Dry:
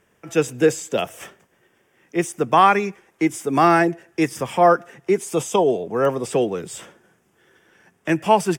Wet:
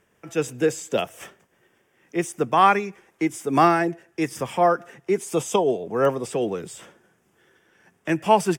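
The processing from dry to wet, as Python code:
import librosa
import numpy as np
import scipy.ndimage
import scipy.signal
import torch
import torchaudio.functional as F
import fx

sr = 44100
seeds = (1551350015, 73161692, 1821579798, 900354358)

y = fx.am_noise(x, sr, seeds[0], hz=5.7, depth_pct=55)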